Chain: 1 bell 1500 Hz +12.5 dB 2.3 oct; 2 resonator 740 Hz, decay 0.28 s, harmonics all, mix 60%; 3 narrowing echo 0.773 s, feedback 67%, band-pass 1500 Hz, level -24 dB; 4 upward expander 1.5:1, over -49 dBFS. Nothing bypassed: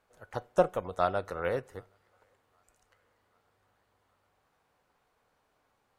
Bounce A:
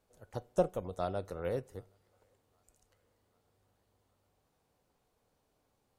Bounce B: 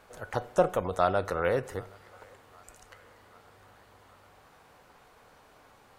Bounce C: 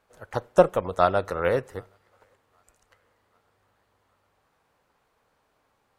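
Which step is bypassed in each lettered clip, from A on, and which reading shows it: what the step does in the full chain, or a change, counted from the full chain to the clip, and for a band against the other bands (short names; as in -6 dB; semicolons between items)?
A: 1, 2 kHz band -7.5 dB; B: 4, crest factor change -2.5 dB; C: 2, loudness change +7.5 LU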